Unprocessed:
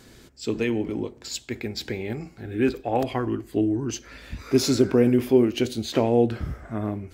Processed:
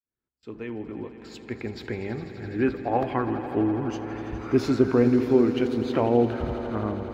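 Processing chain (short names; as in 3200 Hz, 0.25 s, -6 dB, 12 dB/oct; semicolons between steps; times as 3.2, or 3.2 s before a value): opening faded in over 1.75 s; gate with hold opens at -41 dBFS; EQ curve 610 Hz 0 dB, 1200 Hz +6 dB, 7400 Hz -17 dB; swelling echo 83 ms, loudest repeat 5, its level -16 dB; gain -1.5 dB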